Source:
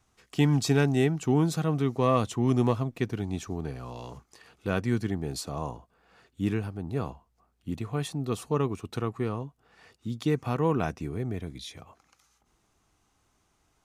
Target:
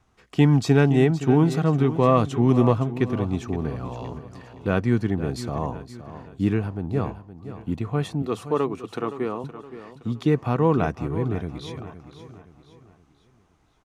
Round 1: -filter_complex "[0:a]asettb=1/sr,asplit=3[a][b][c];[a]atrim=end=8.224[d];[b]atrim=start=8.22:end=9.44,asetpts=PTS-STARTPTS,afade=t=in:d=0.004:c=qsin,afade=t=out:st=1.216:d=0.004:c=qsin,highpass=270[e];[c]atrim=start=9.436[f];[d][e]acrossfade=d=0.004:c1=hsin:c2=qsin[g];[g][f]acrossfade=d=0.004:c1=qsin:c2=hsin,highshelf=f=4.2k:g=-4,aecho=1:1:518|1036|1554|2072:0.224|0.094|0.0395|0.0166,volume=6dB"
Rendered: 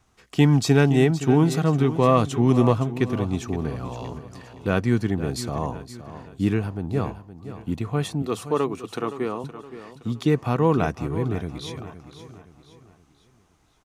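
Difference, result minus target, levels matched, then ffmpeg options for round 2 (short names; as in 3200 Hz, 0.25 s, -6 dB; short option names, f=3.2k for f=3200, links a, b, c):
8000 Hz band +6.5 dB
-filter_complex "[0:a]asettb=1/sr,asplit=3[a][b][c];[a]atrim=end=8.224[d];[b]atrim=start=8.22:end=9.44,asetpts=PTS-STARTPTS,afade=t=in:d=0.004:c=qsin,afade=t=out:st=1.216:d=0.004:c=qsin,highpass=270[e];[c]atrim=start=9.436[f];[d][e]acrossfade=d=0.004:c1=hsin:c2=qsin[g];[g][f]acrossfade=d=0.004:c1=qsin:c2=hsin,highshelf=f=4.2k:g=-13,aecho=1:1:518|1036|1554|2072:0.224|0.094|0.0395|0.0166,volume=6dB"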